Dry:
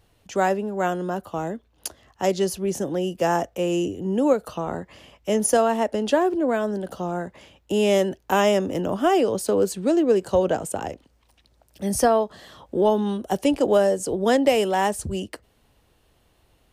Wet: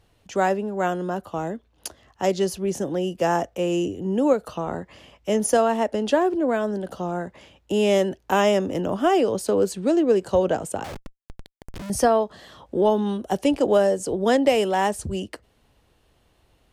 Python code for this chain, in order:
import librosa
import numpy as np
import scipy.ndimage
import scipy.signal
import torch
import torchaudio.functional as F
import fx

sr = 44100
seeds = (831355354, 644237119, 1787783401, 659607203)

y = fx.schmitt(x, sr, flips_db=-46.0, at=(10.84, 11.9))
y = fx.high_shelf(y, sr, hz=12000.0, db=-8.5)